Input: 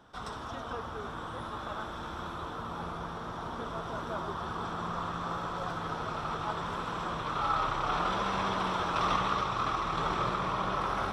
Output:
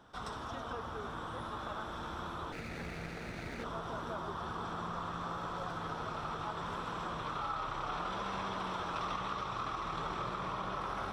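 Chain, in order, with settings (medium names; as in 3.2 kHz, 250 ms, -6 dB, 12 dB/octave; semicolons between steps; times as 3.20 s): 2.52–3.64 s: comb filter that takes the minimum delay 0.48 ms; compression 3:1, threshold -35 dBFS, peak gain reduction 8.5 dB; trim -1.5 dB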